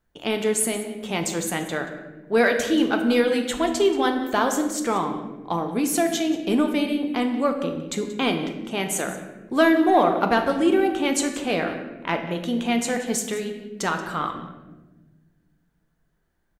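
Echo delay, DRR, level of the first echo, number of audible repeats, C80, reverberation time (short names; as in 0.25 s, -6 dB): 0.181 s, 4.5 dB, -16.0 dB, 1, 9.0 dB, 1.2 s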